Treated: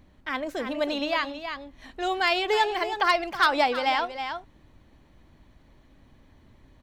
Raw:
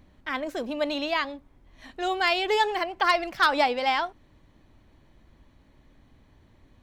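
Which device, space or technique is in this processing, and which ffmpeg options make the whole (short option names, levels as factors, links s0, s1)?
ducked delay: -filter_complex "[0:a]asplit=3[s0][s1][s2];[s1]adelay=321,volume=0.708[s3];[s2]apad=whole_len=315254[s4];[s3][s4]sidechaincompress=threshold=0.0398:ratio=8:attack=5.8:release=739[s5];[s0][s5]amix=inputs=2:normalize=0"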